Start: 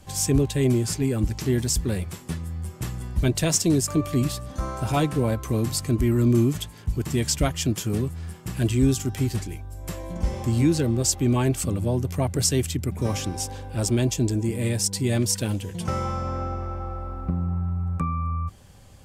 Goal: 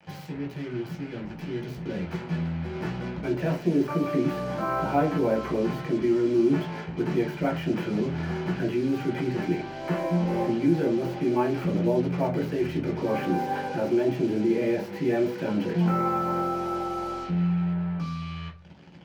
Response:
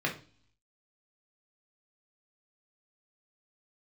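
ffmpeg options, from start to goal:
-filter_complex "[0:a]lowpass=3900,areverse,acompressor=threshold=0.0398:ratio=10,areverse,alimiter=level_in=2.37:limit=0.0631:level=0:latency=1:release=132,volume=0.422,acrossover=split=250|1900[s0][s1][s2];[s1]dynaudnorm=f=290:g=17:m=5.62[s3];[s2]aeval=exprs='(mod(211*val(0)+1,2)-1)/211':c=same[s4];[s0][s3][s4]amix=inputs=3:normalize=0,acrusher=bits=6:mix=0:aa=0.5[s5];[1:a]atrim=start_sample=2205,asetrate=52920,aresample=44100[s6];[s5][s6]afir=irnorm=-1:irlink=0,volume=0.75"

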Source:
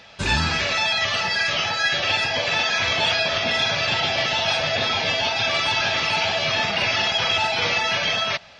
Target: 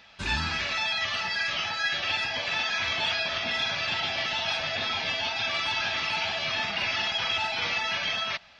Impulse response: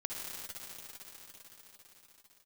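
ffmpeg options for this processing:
-af "equalizer=f=125:t=o:w=1:g=-7,equalizer=f=500:t=o:w=1:g=-8,equalizer=f=8000:t=o:w=1:g=-6,volume=0.531"

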